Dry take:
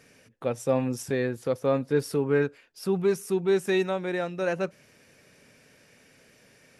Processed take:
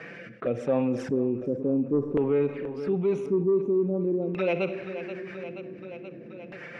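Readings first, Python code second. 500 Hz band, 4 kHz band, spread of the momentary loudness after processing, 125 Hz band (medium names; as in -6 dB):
0.0 dB, no reading, 16 LU, -0.5 dB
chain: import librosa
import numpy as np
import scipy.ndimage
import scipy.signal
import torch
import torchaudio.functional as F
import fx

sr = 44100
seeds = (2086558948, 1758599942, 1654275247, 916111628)

y = fx.spec_box(x, sr, start_s=4.22, length_s=0.43, low_hz=2000.0, high_hz=5800.0, gain_db=10)
y = scipy.signal.sosfilt(scipy.signal.butter(2, 170.0, 'highpass', fs=sr, output='sos'), y)
y = fx.env_flanger(y, sr, rest_ms=6.4, full_db=-25.0)
y = fx.rotary_switch(y, sr, hz=0.8, then_hz=7.5, switch_at_s=2.94)
y = fx.filter_lfo_lowpass(y, sr, shape='square', hz=0.46, low_hz=330.0, high_hz=1900.0, q=1.7)
y = 10.0 ** (-15.0 / 20.0) * np.tanh(y / 10.0 ** (-15.0 / 20.0))
y = fx.echo_feedback(y, sr, ms=479, feedback_pct=55, wet_db=-20.0)
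y = fx.rev_schroeder(y, sr, rt60_s=0.75, comb_ms=33, drr_db=16.0)
y = fx.env_flatten(y, sr, amount_pct=50)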